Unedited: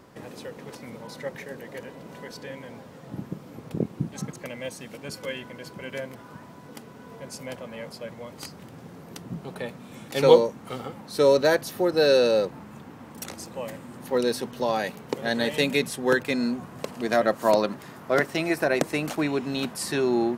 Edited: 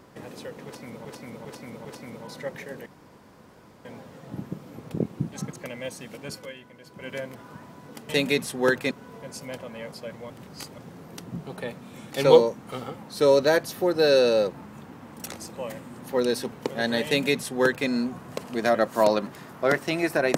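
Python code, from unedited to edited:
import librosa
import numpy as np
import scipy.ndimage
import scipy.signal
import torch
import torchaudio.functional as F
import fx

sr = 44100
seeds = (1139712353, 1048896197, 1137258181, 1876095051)

y = fx.edit(x, sr, fx.repeat(start_s=0.65, length_s=0.4, count=4),
    fx.room_tone_fill(start_s=1.66, length_s=0.99),
    fx.fade_down_up(start_s=5.13, length_s=0.74, db=-9.0, fade_s=0.26, curve='qua'),
    fx.reverse_span(start_s=8.28, length_s=0.48),
    fx.cut(start_s=14.5, length_s=0.49),
    fx.duplicate(start_s=15.53, length_s=0.82, to_s=6.89), tone=tone)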